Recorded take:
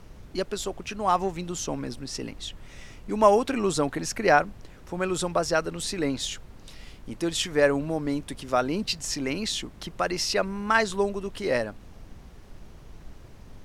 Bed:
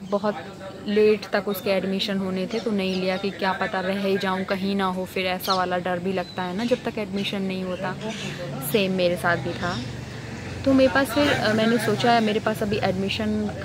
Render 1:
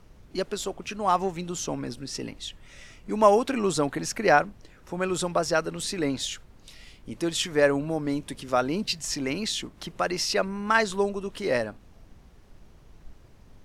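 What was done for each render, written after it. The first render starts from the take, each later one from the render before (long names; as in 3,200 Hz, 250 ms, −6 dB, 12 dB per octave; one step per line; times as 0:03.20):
noise reduction from a noise print 6 dB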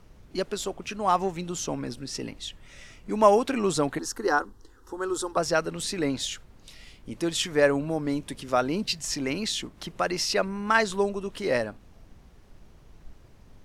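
0:03.99–0:05.37: phaser with its sweep stopped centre 630 Hz, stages 6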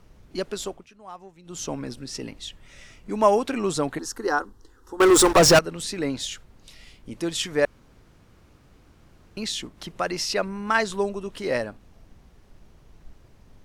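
0:00.67–0:01.63: duck −18 dB, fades 0.20 s
0:05.00–0:05.59: leveller curve on the samples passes 5
0:07.65–0:09.37: fill with room tone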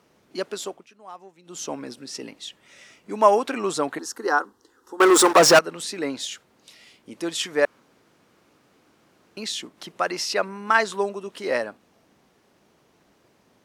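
high-pass filter 250 Hz 12 dB per octave
dynamic equaliser 1,200 Hz, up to +4 dB, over −35 dBFS, Q 0.83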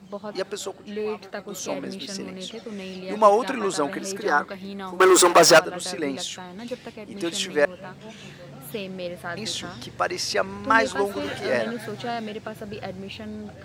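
mix in bed −11 dB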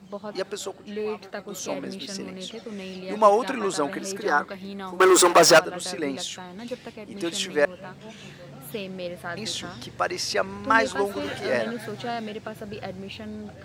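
level −1 dB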